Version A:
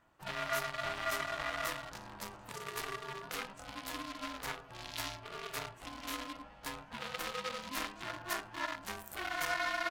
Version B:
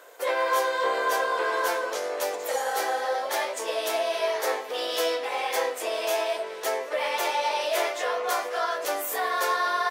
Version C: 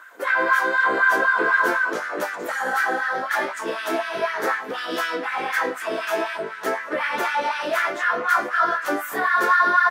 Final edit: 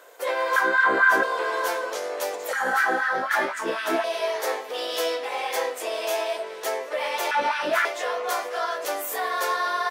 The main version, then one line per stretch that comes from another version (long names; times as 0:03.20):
B
0:00.56–0:01.23: punch in from C
0:02.53–0:04.04: punch in from C
0:07.31–0:07.85: punch in from C
not used: A